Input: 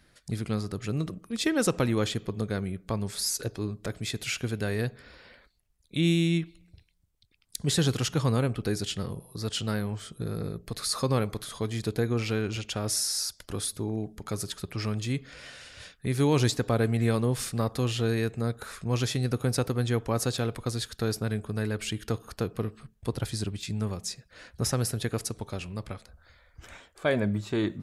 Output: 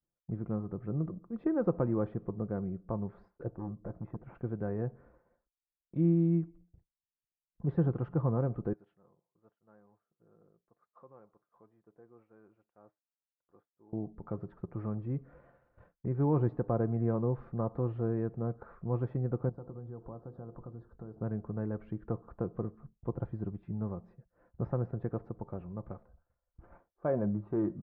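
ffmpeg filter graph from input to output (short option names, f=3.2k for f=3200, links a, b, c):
-filter_complex "[0:a]asettb=1/sr,asplit=3[a][b][c];[a]atrim=end=3.504[d];[b]atrim=start=3.5:end=4.35,asetpts=PTS-STARTPTS,afade=t=in:d=0.004:c=qsin,afade=t=out:st=0.846:d=0.004:c=qsin,aeval=exprs='0.0473*(abs(mod(val(0)/0.0473+3,4)-2)-1)':c=same,lowpass=1.6k,bandreject=f=410:w=8.2[e];[c]atrim=start=4.346[f];[d][e]acrossfade=d=0.004:c1=hsin:c2=qsin[g];[g][f]acrossfade=d=0.004:c1=qsin:c2=hsin,asettb=1/sr,asplit=3[h][i][j];[h]atrim=end=8.734[k];[i]atrim=start=8.73:end=13.93,asetpts=PTS-STARTPTS,afade=t=in:d=0.004:c=qsin,afade=t=out:st=5.196:d=0.004:c=qsin,acompressor=threshold=-42dB:ratio=3:attack=3.2:release=140:knee=1:detection=peak,acrusher=bits=8:mode=log:mix=0:aa=0.000001,highpass=f=870:p=1[l];[j]atrim=start=13.926[m];[k][l]acrossfade=d=0.004:c1=hsin:c2=qsin[n];[n][m]acrossfade=d=0.004:c1=qsin:c2=hsin,asettb=1/sr,asplit=3[o][p][q];[o]atrim=end=19.494[r];[p]atrim=start=19.49:end=21.2,asetpts=PTS-STARTPTS,afade=t=in:d=0.004:c=qsin,afade=t=out:st=1.706:d=0.004:c=qsin,asuperstop=centerf=2400:order=4:qfactor=1,acompressor=threshold=-36dB:ratio=5:attack=3.2:release=140:knee=1:detection=peak,bandreject=f=50:t=h:w=6,bandreject=f=100:t=h:w=6,bandreject=f=150:t=h:w=6,bandreject=f=200:t=h:w=6,bandreject=f=250:t=h:w=6,bandreject=f=300:t=h:w=6,bandreject=f=350:t=h:w=6,bandreject=f=400:t=h:w=6,bandreject=f=450:t=h:w=6,bandreject=f=500:t=h:w=6[s];[q]atrim=start=21.196[t];[r][s]acrossfade=d=0.004:c1=hsin:c2=qsin[u];[u][t]acrossfade=d=0.004:c1=qsin:c2=hsin,lowpass=f=1.1k:w=0.5412,lowpass=f=1.1k:w=1.3066,agate=range=-33dB:threshold=-48dB:ratio=3:detection=peak,aecho=1:1:5.8:0.32,volume=-4.5dB"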